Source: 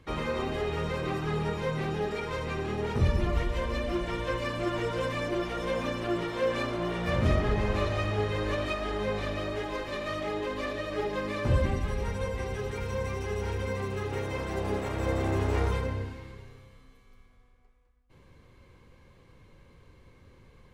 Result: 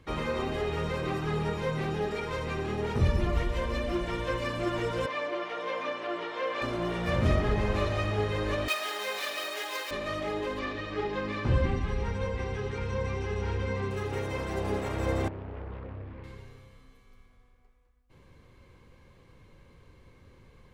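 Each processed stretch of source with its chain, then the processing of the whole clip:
5.06–6.62 BPF 470–4200 Hz + comb 6.7 ms, depth 40%
8.68–9.91 median filter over 5 samples + HPF 380 Hz + tilt +4.5 dB/oct
10.59–13.91 LPF 5100 Hz + notch 600 Hz, Q 7.3 + doubler 30 ms -12.5 dB
15.28–16.24 compressor 4:1, threshold -37 dBFS + air absorption 500 m + Doppler distortion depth 0.63 ms
whole clip: dry

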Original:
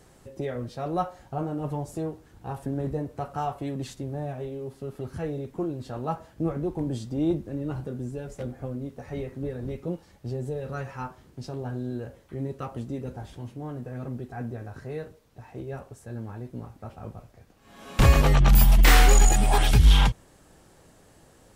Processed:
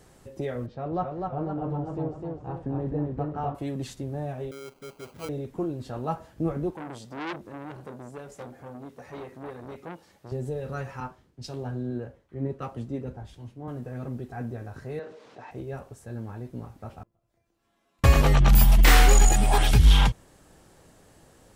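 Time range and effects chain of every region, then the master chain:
0.66–3.55 tape spacing loss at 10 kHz 31 dB + warbling echo 0.254 s, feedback 46%, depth 93 cents, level -3.5 dB
4.51–5.29 HPF 640 Hz 6 dB/oct + dispersion highs, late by 0.137 s, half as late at 2300 Hz + sample-rate reducer 1800 Hz
6.7–10.32 HPF 290 Hz 6 dB/oct + core saturation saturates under 2100 Hz
11–13.68 high shelf 7800 Hz -8 dB + three-band expander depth 100%
14.99–15.51 HPF 340 Hz + air absorption 120 m + fast leveller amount 50%
17.03–18.04 compressor 12:1, threshold -52 dBFS + resonator 340 Hz, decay 0.36 s, mix 90%
whole clip: dry

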